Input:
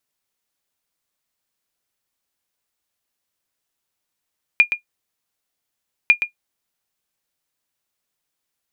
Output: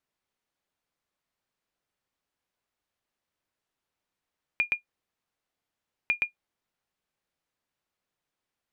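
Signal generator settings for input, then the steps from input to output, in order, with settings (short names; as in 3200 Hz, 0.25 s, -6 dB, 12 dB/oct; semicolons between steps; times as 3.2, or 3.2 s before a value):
sonar ping 2420 Hz, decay 0.11 s, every 1.50 s, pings 2, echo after 0.12 s, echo -9.5 dB -2.5 dBFS
LPF 2100 Hz 6 dB/oct; compressor 2:1, threshold -19 dBFS; limiter -13 dBFS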